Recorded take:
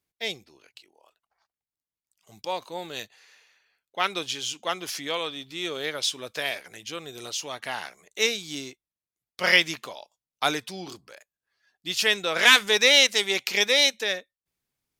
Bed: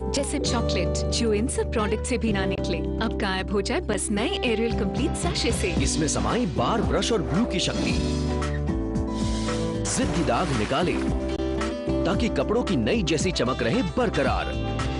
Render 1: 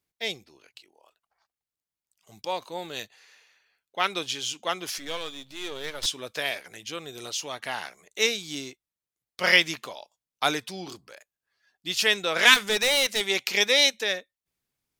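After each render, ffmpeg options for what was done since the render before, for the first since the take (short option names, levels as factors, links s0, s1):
-filter_complex "[0:a]asettb=1/sr,asplit=3[s0][s1][s2];[s0]atrim=end=4.984[s3];[s1]atrim=start=4.98:end=6.06,asetpts=PTS-STARTPTS,afade=t=in:d=0.004:c=qsin,afade=t=out:st=1.076:d=0.004:c=qsin,aeval=exprs='if(lt(val(0),0),0.251*val(0),val(0))':c=same[s4];[s2]atrim=start=6.056[s5];[s3][s4]acrossfade=d=0.004:c1=hsin:c2=qsin[s6];[s6][s5]acrossfade=d=0.004:c1=qsin:c2=hsin,asettb=1/sr,asplit=3[s7][s8][s9];[s7]atrim=end=12.544[s10];[s8]atrim=start=12.54:end=13.21,asetpts=PTS-STARTPTS,afade=t=in:d=0.004:c=qsin,afade=t=out:st=0.666:d=0.004:c=qsin,asoftclip=type=hard:threshold=0.1[s11];[s9]atrim=start=13.206[s12];[s10][s11]acrossfade=d=0.004:c1=hsin:c2=qsin[s13];[s13][s12]acrossfade=d=0.004:c1=qsin:c2=hsin"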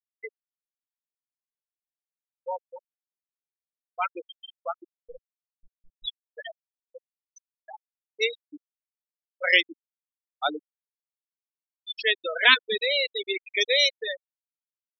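-af "afftfilt=real='re*gte(hypot(re,im),0.2)':imag='im*gte(hypot(re,im),0.2)':win_size=1024:overlap=0.75,lowshelf=f=82:g=-8"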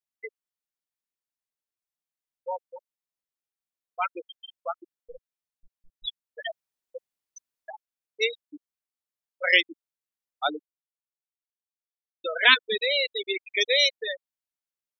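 -filter_complex "[0:a]asettb=1/sr,asplit=3[s0][s1][s2];[s0]atrim=end=6.424[s3];[s1]atrim=start=6.42:end=7.71,asetpts=PTS-STARTPTS,afade=t=in:d=0.004:c=qsin,afade=t=out:st=1.286:d=0.004:c=qsin,acontrast=56[s4];[s2]atrim=start=7.706[s5];[s3][s4]acrossfade=d=0.004:c1=hsin:c2=qsin[s6];[s6][s5]acrossfade=d=0.004:c1=qsin:c2=hsin,asplit=2[s7][s8];[s7]atrim=end=12.24,asetpts=PTS-STARTPTS,afade=t=out:st=10.54:d=1.7:c=exp[s9];[s8]atrim=start=12.24,asetpts=PTS-STARTPTS,afade=t=in:d=0.004:c=hsin[s10];[s9][s10]concat=n=2:v=0:a=1"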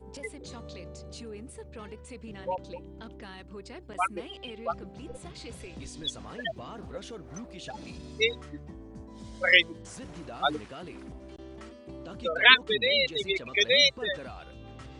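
-filter_complex "[1:a]volume=0.112[s0];[0:a][s0]amix=inputs=2:normalize=0"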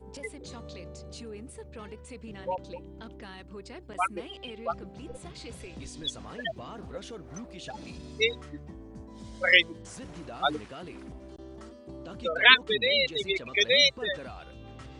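-filter_complex "[0:a]asettb=1/sr,asplit=3[s0][s1][s2];[s0]atrim=end=11.284[s3];[s1]atrim=start=11.28:end=12.05,asetpts=PTS-STARTPTS,afade=t=in:d=0.004:c=qsin,afade=t=out:st=0.766:d=0.004:c=qsin,equalizer=f=2400:t=o:w=0.76:g=-9.5[s4];[s2]atrim=start=12.046[s5];[s3][s4]acrossfade=d=0.004:c1=hsin:c2=qsin[s6];[s6][s5]acrossfade=d=0.004:c1=qsin:c2=hsin"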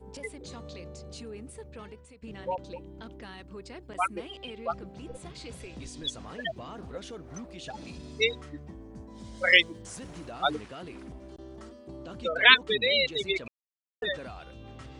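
-filter_complex "[0:a]asettb=1/sr,asplit=3[s0][s1][s2];[s0]atrim=end=9.374[s3];[s1]atrim=start=9.37:end=10.32,asetpts=PTS-STARTPTS,afade=t=in:d=0.004:c=qsin,afade=t=out:st=0.946:d=0.004:c=qsin,highshelf=f=9200:g=8.5[s4];[s2]atrim=start=10.316[s5];[s3][s4]acrossfade=d=0.004:c1=hsin:c2=qsin[s6];[s6][s5]acrossfade=d=0.004:c1=qsin:c2=hsin,asplit=4[s7][s8][s9][s10];[s7]atrim=end=2.22,asetpts=PTS-STARTPTS,afade=t=out:st=1.57:d=0.65:c=qsin:silence=0.158489[s11];[s8]atrim=start=2.22:end=13.48,asetpts=PTS-STARTPTS,afade=t=in:d=0.004:c=hsin:silence=0.158489,afade=t=out:st=11.256:d=0.004:c=hsin[s12];[s9]atrim=start=13.48:end=14.02,asetpts=PTS-STARTPTS,volume=0[s13];[s10]atrim=start=14.02,asetpts=PTS-STARTPTS,afade=t=in:d=0.004:c=hsin[s14];[s11][s12][s13][s14]concat=n=4:v=0:a=1"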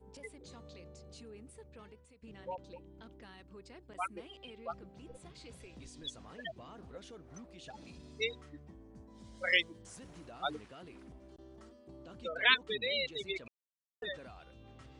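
-af "volume=0.335"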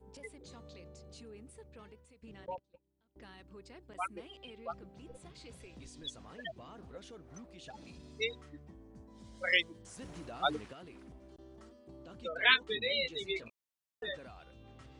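-filter_complex "[0:a]asettb=1/sr,asplit=3[s0][s1][s2];[s0]atrim=end=2.464[s3];[s1]atrim=start=2.46:end=3.16,asetpts=PTS-STARTPTS,afade=t=in:d=0.004:c=qsin,afade=t=out:st=0.696:d=0.004:c=qsin,agate=range=0.0501:threshold=0.00501:ratio=16:release=100:detection=peak[s4];[s2]atrim=start=3.156[s5];[s3][s4]acrossfade=d=0.004:c1=hsin:c2=qsin[s6];[s6][s5]acrossfade=d=0.004:c1=qsin:c2=hsin,asettb=1/sr,asplit=3[s7][s8][s9];[s7]atrim=end=12.394[s10];[s8]atrim=start=12.39:end=14.15,asetpts=PTS-STARTPTS,afade=t=in:d=0.004:c=qsin,afade=t=out:st=1.756:d=0.004:c=qsin,asplit=2[s11][s12];[s12]adelay=18,volume=0.501[s13];[s11][s13]amix=inputs=2:normalize=0,atrim=end_sample=77616[s14];[s9]atrim=start=14.146[s15];[s10][s14]acrossfade=d=0.004:c1=hsin:c2=qsin[s16];[s16][s15]acrossfade=d=0.004:c1=qsin:c2=hsin,asplit=3[s17][s18][s19];[s17]atrim=end=9.992[s20];[s18]atrim=start=9.988:end=10.732,asetpts=PTS-STARTPTS,volume=1.78[s21];[s19]atrim=start=10.728[s22];[s20][s21]acrossfade=d=0.004:c1=hsin:c2=hsin[s23];[s23][s22]acrossfade=d=0.004:c1=hsin:c2=hsin"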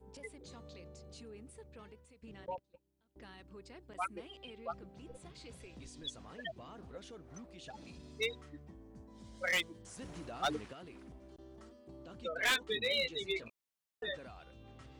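-af "volume=22.4,asoftclip=hard,volume=0.0447"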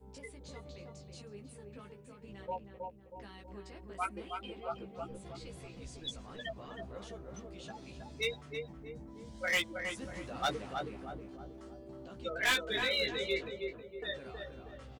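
-filter_complex "[0:a]asplit=2[s0][s1];[s1]adelay=15,volume=0.631[s2];[s0][s2]amix=inputs=2:normalize=0,asplit=2[s3][s4];[s4]adelay=319,lowpass=f=1300:p=1,volume=0.708,asplit=2[s5][s6];[s6]adelay=319,lowpass=f=1300:p=1,volume=0.48,asplit=2[s7][s8];[s8]adelay=319,lowpass=f=1300:p=1,volume=0.48,asplit=2[s9][s10];[s10]adelay=319,lowpass=f=1300:p=1,volume=0.48,asplit=2[s11][s12];[s12]adelay=319,lowpass=f=1300:p=1,volume=0.48,asplit=2[s13][s14];[s14]adelay=319,lowpass=f=1300:p=1,volume=0.48[s15];[s5][s7][s9][s11][s13][s15]amix=inputs=6:normalize=0[s16];[s3][s16]amix=inputs=2:normalize=0"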